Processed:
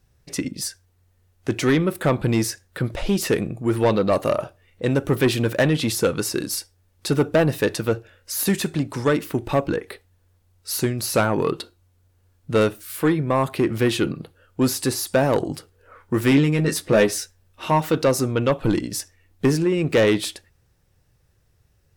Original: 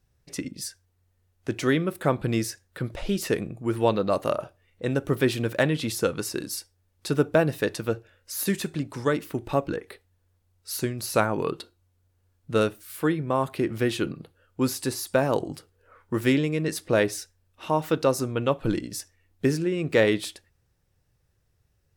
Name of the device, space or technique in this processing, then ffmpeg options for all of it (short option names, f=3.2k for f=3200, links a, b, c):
saturation between pre-emphasis and de-emphasis: -filter_complex "[0:a]highshelf=f=4.7k:g=7,asoftclip=type=tanh:threshold=-18dB,highshelf=f=4.7k:g=-7,asettb=1/sr,asplit=3[a][b][c];[a]atrim=end=16.304[d];[b]atrim=start=16.3:end=17.8,asetpts=PTS-STARTPTS,afade=t=in:d=0.004:c=qsin,afade=t=out:st=1.496:d=0.004:c=qsin,asplit=2[e][f];[f]adelay=14,volume=-5.5dB[g];[e][g]amix=inputs=2:normalize=0,atrim=end_sample=66150[h];[c]atrim=start=17.796[i];[d][h]acrossfade=d=0.004:c1=hsin:c2=qsin[j];[j][i]acrossfade=d=0.004:c1=qsin:c2=hsin,volume=7dB"